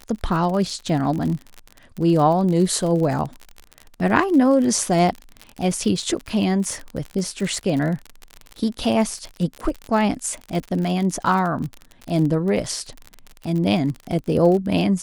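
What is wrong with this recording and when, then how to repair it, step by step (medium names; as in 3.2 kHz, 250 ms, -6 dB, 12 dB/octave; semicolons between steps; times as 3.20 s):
crackle 46 per s -26 dBFS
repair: de-click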